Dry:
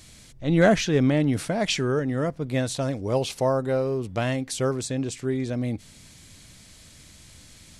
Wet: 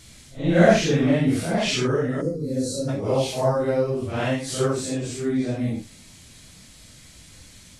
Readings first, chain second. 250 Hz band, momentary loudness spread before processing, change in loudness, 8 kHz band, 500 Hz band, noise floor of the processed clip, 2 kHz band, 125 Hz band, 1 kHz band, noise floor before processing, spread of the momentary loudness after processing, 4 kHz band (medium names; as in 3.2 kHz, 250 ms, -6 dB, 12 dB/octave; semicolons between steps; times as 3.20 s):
+2.0 dB, 9 LU, +2.0 dB, +2.0 dB, +2.5 dB, -48 dBFS, +1.5 dB, +1.5 dB, +2.5 dB, -50 dBFS, 10 LU, +2.0 dB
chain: phase randomisation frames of 200 ms; time-frequency box 2.21–2.89 s, 560–3900 Hz -21 dB; trim +2 dB